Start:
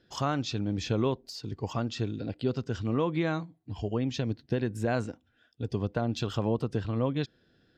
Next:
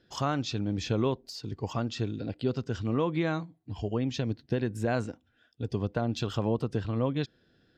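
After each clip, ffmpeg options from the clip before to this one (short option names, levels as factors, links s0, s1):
-af anull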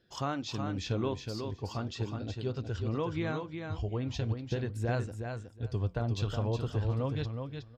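-filter_complex "[0:a]asubboost=boost=6:cutoff=82,flanger=delay=1.7:depth=9.6:regen=-76:speed=0.39:shape=sinusoidal,asplit=2[s0][s1];[s1]aecho=0:1:367|734|1101:0.501|0.0752|0.0113[s2];[s0][s2]amix=inputs=2:normalize=0"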